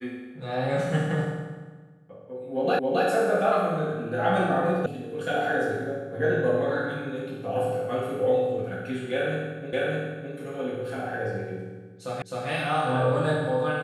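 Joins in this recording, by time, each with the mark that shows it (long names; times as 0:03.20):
0:02.79: the same again, the last 0.27 s
0:04.86: cut off before it has died away
0:09.73: the same again, the last 0.61 s
0:12.22: the same again, the last 0.26 s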